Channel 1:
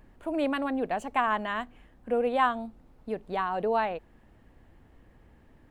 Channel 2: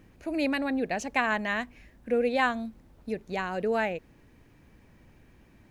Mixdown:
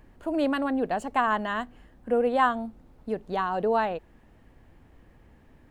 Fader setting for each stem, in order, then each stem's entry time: +1.5 dB, -11.5 dB; 0.00 s, 0.00 s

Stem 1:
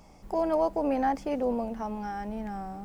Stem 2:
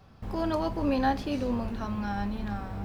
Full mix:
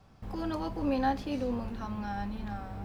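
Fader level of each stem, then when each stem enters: -14.0 dB, -4.5 dB; 0.00 s, 0.00 s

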